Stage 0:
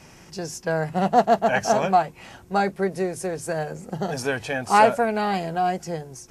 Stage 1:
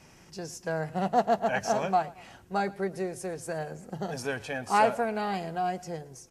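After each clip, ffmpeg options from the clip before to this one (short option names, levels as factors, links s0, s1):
-af "aecho=1:1:112|224|336:0.0891|0.0392|0.0173,volume=0.447"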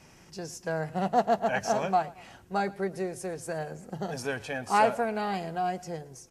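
-af anull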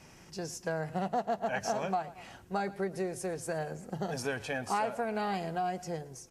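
-af "acompressor=threshold=0.0355:ratio=4"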